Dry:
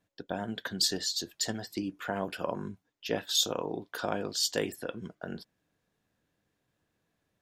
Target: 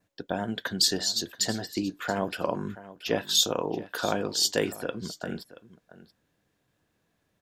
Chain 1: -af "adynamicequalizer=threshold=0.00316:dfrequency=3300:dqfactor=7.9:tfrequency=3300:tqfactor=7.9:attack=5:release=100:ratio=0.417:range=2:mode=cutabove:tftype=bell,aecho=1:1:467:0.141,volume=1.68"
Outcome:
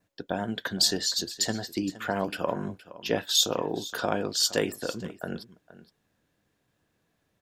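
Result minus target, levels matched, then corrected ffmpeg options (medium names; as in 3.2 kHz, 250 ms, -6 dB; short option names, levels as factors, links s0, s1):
echo 211 ms early
-af "adynamicequalizer=threshold=0.00316:dfrequency=3300:dqfactor=7.9:tfrequency=3300:tqfactor=7.9:attack=5:release=100:ratio=0.417:range=2:mode=cutabove:tftype=bell,aecho=1:1:678:0.141,volume=1.68"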